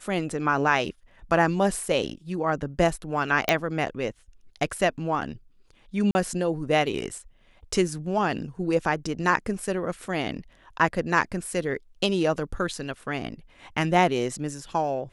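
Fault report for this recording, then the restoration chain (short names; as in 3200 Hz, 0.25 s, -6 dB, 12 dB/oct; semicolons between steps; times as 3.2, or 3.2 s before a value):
3.49 pop -6 dBFS
6.11–6.15 gap 40 ms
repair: de-click; interpolate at 6.11, 40 ms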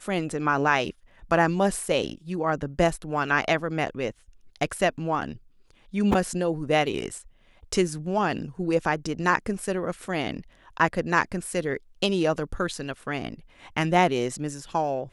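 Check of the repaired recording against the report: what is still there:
none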